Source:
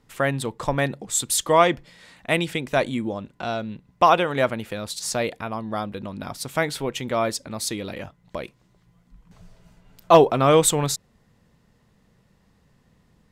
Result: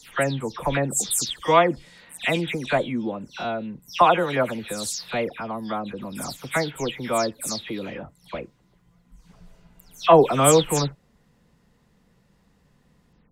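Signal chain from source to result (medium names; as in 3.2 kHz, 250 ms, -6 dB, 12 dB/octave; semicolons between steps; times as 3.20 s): delay that grows with frequency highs early, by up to 191 ms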